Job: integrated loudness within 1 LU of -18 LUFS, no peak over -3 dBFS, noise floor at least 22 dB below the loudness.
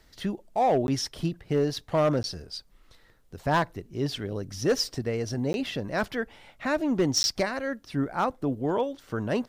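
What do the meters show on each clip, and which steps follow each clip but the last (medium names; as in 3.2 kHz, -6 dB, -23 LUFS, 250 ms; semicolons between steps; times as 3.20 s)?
clipped samples 0.5%; clipping level -17.0 dBFS; dropouts 4; longest dropout 11 ms; loudness -28.5 LUFS; peak level -17.0 dBFS; loudness target -18.0 LUFS
-> clip repair -17 dBFS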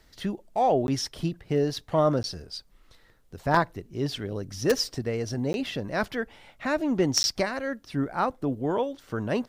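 clipped samples 0.0%; dropouts 4; longest dropout 11 ms
-> interpolate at 0.87/2.23/5.53/7.23 s, 11 ms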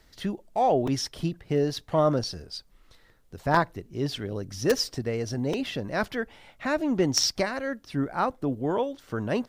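dropouts 0; loudness -27.5 LUFS; peak level -8.0 dBFS; loudness target -18.0 LUFS
-> trim +9.5 dB; peak limiter -3 dBFS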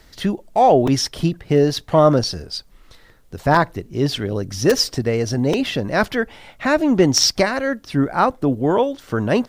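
loudness -18.5 LUFS; peak level -3.0 dBFS; noise floor -50 dBFS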